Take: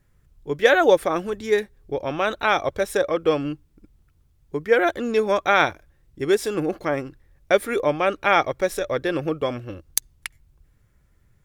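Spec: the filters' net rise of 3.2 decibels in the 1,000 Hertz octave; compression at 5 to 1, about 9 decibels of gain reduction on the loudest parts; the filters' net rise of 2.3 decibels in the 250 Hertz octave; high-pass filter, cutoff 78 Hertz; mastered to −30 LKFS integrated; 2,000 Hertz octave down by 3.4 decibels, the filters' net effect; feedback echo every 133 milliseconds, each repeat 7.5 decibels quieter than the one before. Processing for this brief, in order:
high-pass filter 78 Hz
parametric band 250 Hz +3 dB
parametric band 1,000 Hz +6.5 dB
parametric band 2,000 Hz −8 dB
downward compressor 5 to 1, threshold −19 dBFS
repeating echo 133 ms, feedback 42%, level −7.5 dB
level −5 dB

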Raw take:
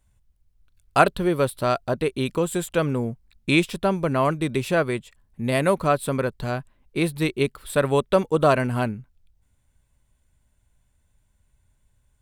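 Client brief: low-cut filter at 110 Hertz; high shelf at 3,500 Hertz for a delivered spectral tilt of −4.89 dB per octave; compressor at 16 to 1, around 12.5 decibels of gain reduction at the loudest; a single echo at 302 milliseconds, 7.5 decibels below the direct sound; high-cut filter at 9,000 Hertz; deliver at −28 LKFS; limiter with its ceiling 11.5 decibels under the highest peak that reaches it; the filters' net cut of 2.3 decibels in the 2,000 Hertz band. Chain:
high-pass filter 110 Hz
low-pass filter 9,000 Hz
parametric band 2,000 Hz −6 dB
high-shelf EQ 3,500 Hz +8 dB
downward compressor 16 to 1, threshold −24 dBFS
brickwall limiter −22 dBFS
single-tap delay 302 ms −7.5 dB
level +4.5 dB

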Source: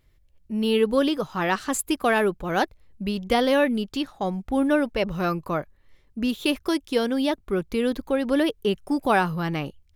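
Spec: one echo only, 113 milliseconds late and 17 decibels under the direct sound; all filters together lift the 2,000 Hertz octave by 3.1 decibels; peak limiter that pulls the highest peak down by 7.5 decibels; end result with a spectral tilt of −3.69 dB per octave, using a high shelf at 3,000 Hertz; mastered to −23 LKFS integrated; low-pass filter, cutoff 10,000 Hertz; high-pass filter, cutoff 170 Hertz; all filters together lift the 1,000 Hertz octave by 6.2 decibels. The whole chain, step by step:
high-pass filter 170 Hz
low-pass filter 10,000 Hz
parametric band 1,000 Hz +8.5 dB
parametric band 2,000 Hz +3 dB
high-shelf EQ 3,000 Hz −7 dB
brickwall limiter −11 dBFS
single-tap delay 113 ms −17 dB
level +1 dB

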